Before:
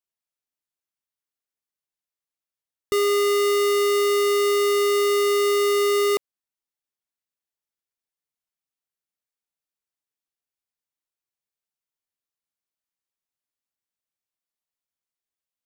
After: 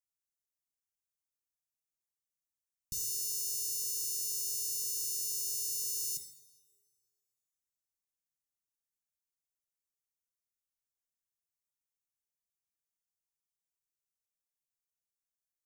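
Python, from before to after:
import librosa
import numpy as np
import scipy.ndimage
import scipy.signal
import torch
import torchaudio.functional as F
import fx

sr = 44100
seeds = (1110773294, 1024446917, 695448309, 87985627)

y = scipy.signal.sosfilt(scipy.signal.ellip(3, 1.0, 80, [140.0, 5900.0], 'bandstop', fs=sr, output='sos'), x)
y = fx.rev_double_slope(y, sr, seeds[0], early_s=0.67, late_s=2.1, knee_db=-19, drr_db=5.0)
y = F.gain(torch.from_numpy(y), -2.5).numpy()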